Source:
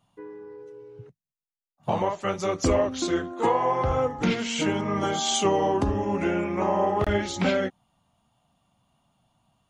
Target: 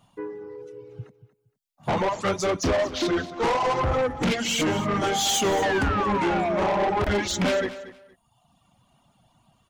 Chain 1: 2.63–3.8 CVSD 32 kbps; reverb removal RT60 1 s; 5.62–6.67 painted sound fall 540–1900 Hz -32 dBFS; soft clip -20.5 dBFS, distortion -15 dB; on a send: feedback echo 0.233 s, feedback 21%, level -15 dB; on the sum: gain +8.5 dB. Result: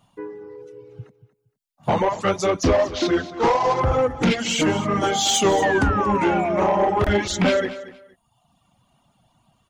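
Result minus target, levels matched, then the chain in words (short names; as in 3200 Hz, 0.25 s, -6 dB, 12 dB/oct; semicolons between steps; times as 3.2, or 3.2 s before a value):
soft clip: distortion -7 dB
2.63–3.8 CVSD 32 kbps; reverb removal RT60 1 s; 5.62–6.67 painted sound fall 540–1900 Hz -32 dBFS; soft clip -28.5 dBFS, distortion -8 dB; on a send: feedback echo 0.233 s, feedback 21%, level -15 dB; on the sum: gain +8.5 dB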